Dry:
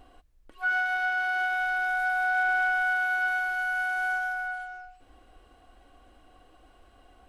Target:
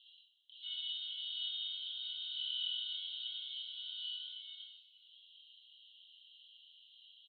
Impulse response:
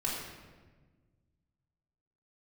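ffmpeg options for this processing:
-filter_complex "[0:a]asuperpass=centerf=3400:order=8:qfactor=3.8,asplit=2[s0][s1];[s1]adelay=25,volume=0.562[s2];[s0][s2]amix=inputs=2:normalize=0,aecho=1:1:34|49:0.596|0.316,asplit=2[s3][s4];[1:a]atrim=start_sample=2205[s5];[s4][s5]afir=irnorm=-1:irlink=0,volume=0.473[s6];[s3][s6]amix=inputs=2:normalize=0,volume=2.99"

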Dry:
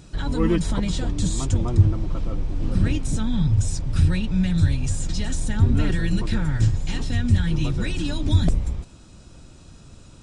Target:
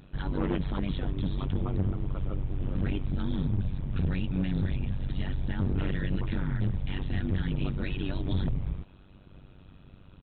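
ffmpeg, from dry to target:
-af "aresample=8000,asoftclip=type=hard:threshold=0.133,aresample=44100,tremolo=f=96:d=0.919,volume=0.75"

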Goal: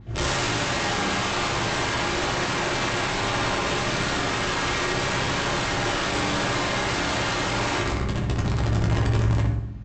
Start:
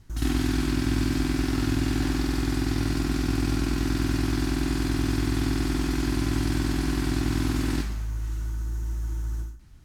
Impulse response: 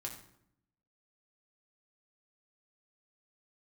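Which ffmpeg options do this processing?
-filter_complex "[0:a]highpass=66,bass=f=250:g=-2,treble=f=4000:g=-14,asplit=4[s0][s1][s2][s3];[s1]asetrate=33038,aresample=44100,atempo=1.33484,volume=0.708[s4];[s2]asetrate=52444,aresample=44100,atempo=0.840896,volume=0.794[s5];[s3]asetrate=88200,aresample=44100,atempo=0.5,volume=0.794[s6];[s0][s4][s5][s6]amix=inputs=4:normalize=0,aeval=exprs='val(0)+0.00562*(sin(2*PI*50*n/s)+sin(2*PI*2*50*n/s)/2+sin(2*PI*3*50*n/s)/3+sin(2*PI*4*50*n/s)/4+sin(2*PI*5*50*n/s)/5)':c=same,aresample=16000,aeval=exprs='(mod(16.8*val(0)+1,2)-1)/16.8':c=same,aresample=44100,asplit=2[s7][s8];[s8]adelay=61,lowpass=f=2100:p=1,volume=0.631,asplit=2[s9][s10];[s10]adelay=61,lowpass=f=2100:p=1,volume=0.47,asplit=2[s11][s12];[s12]adelay=61,lowpass=f=2100:p=1,volume=0.47,asplit=2[s13][s14];[s14]adelay=61,lowpass=f=2100:p=1,volume=0.47,asplit=2[s15][s16];[s16]adelay=61,lowpass=f=2100:p=1,volume=0.47,asplit=2[s17][s18];[s18]adelay=61,lowpass=f=2100:p=1,volume=0.47[s19];[s7][s9][s11][s13][s15][s17][s19]amix=inputs=7:normalize=0[s20];[1:a]atrim=start_sample=2205[s21];[s20][s21]afir=irnorm=-1:irlink=0,adynamicequalizer=threshold=0.00447:dfrequency=4500:dqfactor=0.7:tfrequency=4500:tqfactor=0.7:attack=5:release=100:ratio=0.375:range=3:mode=cutabove:tftype=highshelf,volume=1.88"

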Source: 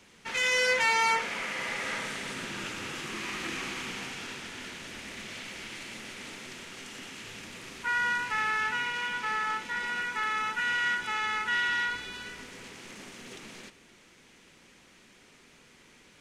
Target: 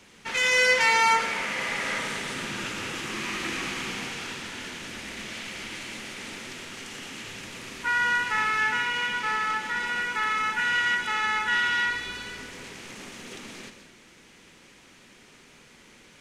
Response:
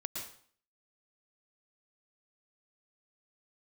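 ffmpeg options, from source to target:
-filter_complex "[0:a]asplit=2[s0][s1];[1:a]atrim=start_sample=2205,asetrate=38367,aresample=44100[s2];[s1][s2]afir=irnorm=-1:irlink=0,volume=0.668[s3];[s0][s3]amix=inputs=2:normalize=0"

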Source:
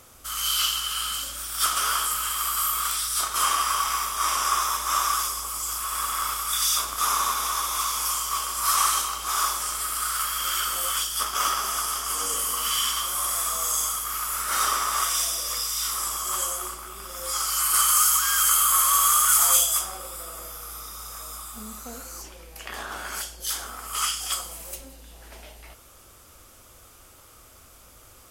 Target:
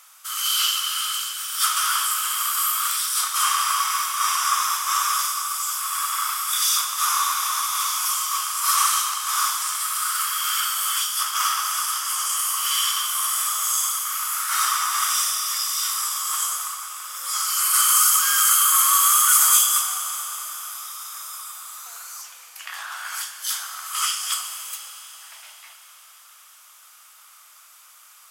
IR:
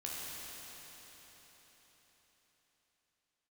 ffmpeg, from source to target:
-filter_complex "[0:a]highpass=f=1000:w=0.5412,highpass=f=1000:w=1.3066,asplit=2[s0][s1];[1:a]atrim=start_sample=2205[s2];[s1][s2]afir=irnorm=-1:irlink=0,volume=0.562[s3];[s0][s3]amix=inputs=2:normalize=0"

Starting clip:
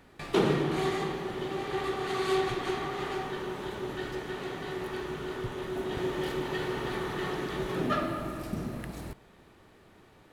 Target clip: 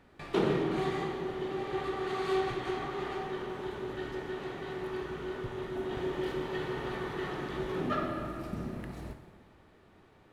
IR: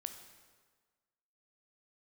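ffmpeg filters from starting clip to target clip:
-filter_complex "[0:a]highshelf=f=5200:g=-9[s0];[1:a]atrim=start_sample=2205[s1];[s0][s1]afir=irnorm=-1:irlink=0"

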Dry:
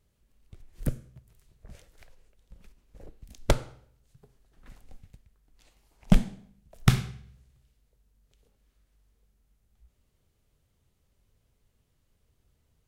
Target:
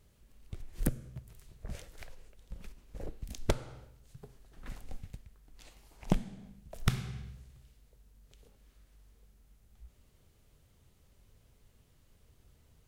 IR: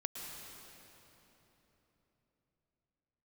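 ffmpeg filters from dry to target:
-af "acompressor=threshold=0.0251:ratio=8,volume=2.11"

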